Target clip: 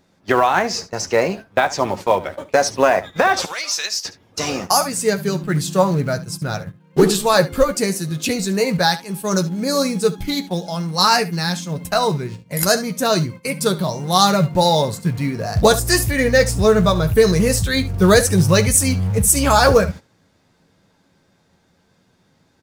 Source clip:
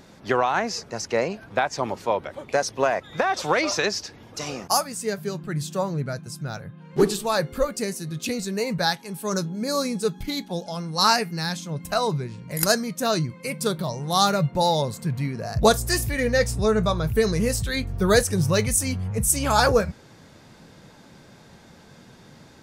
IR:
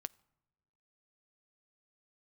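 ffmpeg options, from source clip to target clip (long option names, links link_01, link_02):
-filter_complex "[0:a]agate=range=-17dB:threshold=-36dB:ratio=16:detection=peak,asettb=1/sr,asplit=3[link_01][link_02][link_03];[link_01]atrim=end=3.454[link_04];[link_02]atrim=start=3.45:end=4.05,asetpts=PTS-STARTPTS,afade=type=in:duration=0.004:curve=qsin,afade=type=out:start_time=0.596:duration=0.004:curve=qsin,aderivative[link_05];[link_03]atrim=start=4.046[link_06];[link_04][link_05]acrossfade=duration=0.004:curve1=hsin:curve2=qsin[link_07];[link_07][link_06]acrossfade=duration=0.004:curve1=qsin:curve2=hsin,aecho=1:1:11|71:0.376|0.15,asplit=2[link_08][link_09];[link_09]acrusher=bits=3:mode=log:mix=0:aa=0.000001,volume=-11dB[link_10];[link_08][link_10]amix=inputs=2:normalize=0,dynaudnorm=framelen=530:gausssize=11:maxgain=11.5dB,alimiter=level_in=4.5dB:limit=-1dB:release=50:level=0:latency=1,volume=-1dB"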